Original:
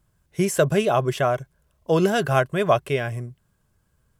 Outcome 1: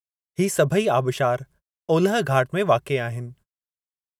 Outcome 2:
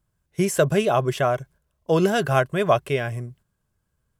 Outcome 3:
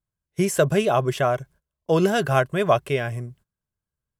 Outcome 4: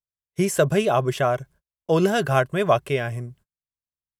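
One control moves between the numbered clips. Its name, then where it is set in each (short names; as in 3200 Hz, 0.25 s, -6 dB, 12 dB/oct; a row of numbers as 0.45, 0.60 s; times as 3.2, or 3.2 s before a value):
gate, range: -53, -7, -21, -39 dB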